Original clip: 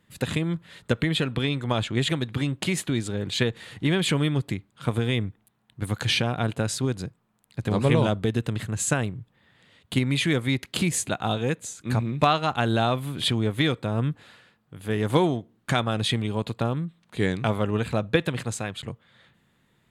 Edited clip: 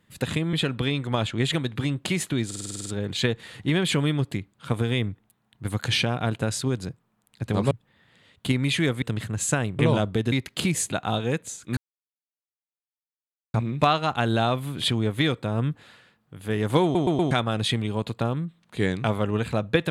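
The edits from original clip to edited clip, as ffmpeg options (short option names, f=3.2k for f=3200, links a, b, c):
-filter_complex "[0:a]asplit=19[a][b][c][d][e][f][g][h][i][j][k][l][m][n][o][p][q][r][s];[a]atrim=end=0.532[t];[b]atrim=start=1.098:end=3.082[u];[c]atrim=start=3.028:end=3.082[v];[d]atrim=start=3.028:end=3.082[w];[e]atrim=start=3.028:end=3.082[x];[f]atrim=start=3.028:end=3.082[y];[g]atrim=start=3.028:end=3.082[z];[h]atrim=start=3.028:end=3.082[aa];[i]atrim=start=3.028:end=3.082[ab];[j]atrim=start=3.028:end=7.882[ac];[k]atrim=start=9.178:end=10.492[ad];[l]atrim=start=8.408:end=9.182[ae];[m]atrim=start=7.878:end=8.412[af];[n]atrim=start=10.488:end=11.94,asetpts=PTS-STARTPTS,afade=t=out:st=1.448:d=0.004:c=hsin,apad=pad_dur=1.77[ag];[o]atrim=start=11.94:end=15.352,asetpts=PTS-STARTPTS,afade=t=in:d=0.004:c=hsin[ah];[p]atrim=start=15.228:end=15.352[ai];[q]atrim=start=15.228:end=15.352[aj];[r]atrim=start=15.228:end=15.352[ak];[s]atrim=start=15.708[al];[t][u]acrossfade=d=0.004:c1=hsin:c2=hsin[am];[am][v]acrossfade=d=0.004:c1=hsin:c2=hsin[an];[an][w]acrossfade=d=0.004:c1=hsin:c2=hsin[ao];[ao][x]acrossfade=d=0.004:c1=hsin:c2=hsin[ap];[ap][y]acrossfade=d=0.004:c1=hsin:c2=hsin[aq];[aq][z]acrossfade=d=0.004:c1=hsin:c2=hsin[ar];[ar][aa]acrossfade=d=0.004:c1=hsin:c2=hsin[as];[as][ab]acrossfade=d=0.004:c1=hsin:c2=hsin[at];[at][ac]acrossfade=d=0.004:c1=hsin:c2=hsin[au];[au][ad]acrossfade=d=0.004:c1=hsin:c2=hsin[av];[av][ae]acrossfade=d=0.004:c1=hsin:c2=hsin[aw];[aw][af]acrossfade=d=0.004:c1=hsin:c2=hsin[ax];[ag][ah]concat=n=2:v=0:a=1[ay];[ax][ay]acrossfade=d=0.004:c1=hsin:c2=hsin[az];[az][ai]acrossfade=d=0.004:c1=hsin:c2=hsin[ba];[ba][aj]acrossfade=d=0.004:c1=hsin:c2=hsin[bb];[bb][ak]acrossfade=d=0.004:c1=hsin:c2=hsin[bc];[bc][al]acrossfade=d=0.004:c1=hsin:c2=hsin"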